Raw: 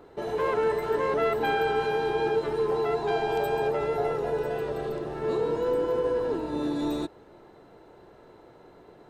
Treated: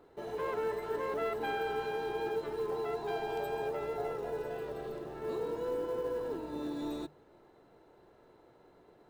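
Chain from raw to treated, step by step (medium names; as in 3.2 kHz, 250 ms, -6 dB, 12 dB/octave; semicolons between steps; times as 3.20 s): hum notches 50/100/150/200 Hz; short-mantissa float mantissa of 4-bit; trim -9 dB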